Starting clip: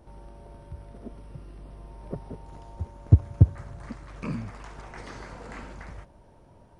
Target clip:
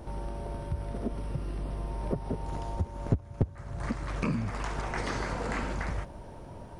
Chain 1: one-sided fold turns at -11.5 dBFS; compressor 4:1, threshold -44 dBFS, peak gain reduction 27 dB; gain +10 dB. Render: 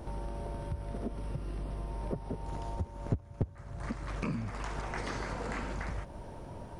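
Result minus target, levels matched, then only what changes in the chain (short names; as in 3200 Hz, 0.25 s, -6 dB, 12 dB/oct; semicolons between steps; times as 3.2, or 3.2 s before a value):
compressor: peak gain reduction +5 dB
change: compressor 4:1, threshold -37.5 dBFS, peak gain reduction 22 dB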